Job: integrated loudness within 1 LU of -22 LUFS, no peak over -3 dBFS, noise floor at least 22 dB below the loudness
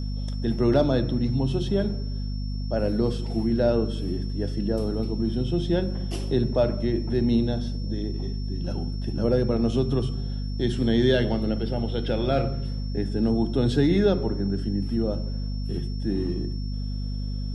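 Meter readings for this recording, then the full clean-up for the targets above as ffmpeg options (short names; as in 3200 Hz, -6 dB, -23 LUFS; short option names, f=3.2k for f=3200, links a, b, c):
hum 50 Hz; harmonics up to 250 Hz; hum level -27 dBFS; steady tone 5400 Hz; tone level -45 dBFS; loudness -26.0 LUFS; peak -8.5 dBFS; loudness target -22.0 LUFS
-> -af "bandreject=f=50:t=h:w=6,bandreject=f=100:t=h:w=6,bandreject=f=150:t=h:w=6,bandreject=f=200:t=h:w=6,bandreject=f=250:t=h:w=6"
-af "bandreject=f=5.4k:w=30"
-af "volume=4dB"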